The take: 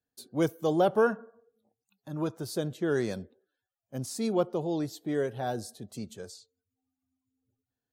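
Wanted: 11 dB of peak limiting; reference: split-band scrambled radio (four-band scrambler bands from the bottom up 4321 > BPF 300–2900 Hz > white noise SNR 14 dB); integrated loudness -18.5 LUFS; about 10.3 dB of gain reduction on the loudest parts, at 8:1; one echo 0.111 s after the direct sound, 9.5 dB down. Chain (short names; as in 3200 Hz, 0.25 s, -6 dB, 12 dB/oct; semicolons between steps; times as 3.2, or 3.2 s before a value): compressor 8:1, threshold -30 dBFS; limiter -32 dBFS; echo 0.111 s -9.5 dB; four-band scrambler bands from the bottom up 4321; BPF 300–2900 Hz; white noise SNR 14 dB; gain +28.5 dB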